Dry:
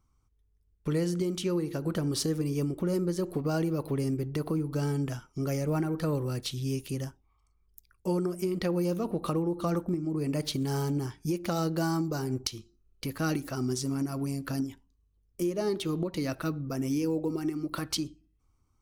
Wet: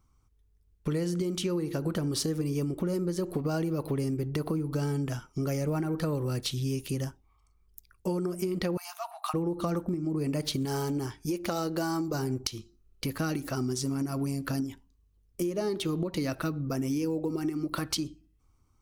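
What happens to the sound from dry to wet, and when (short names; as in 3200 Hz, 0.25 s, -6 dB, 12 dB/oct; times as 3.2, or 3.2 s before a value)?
8.77–9.34 brick-wall FIR high-pass 640 Hz
10.65–12.14 bell 160 Hz -7 dB
whole clip: compressor, threshold -30 dBFS; gain +3.5 dB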